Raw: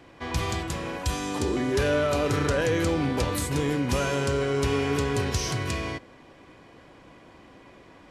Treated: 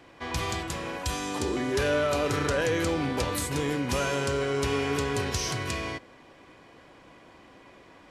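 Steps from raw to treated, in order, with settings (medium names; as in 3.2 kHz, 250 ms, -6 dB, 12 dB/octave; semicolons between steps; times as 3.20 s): bass shelf 350 Hz -5 dB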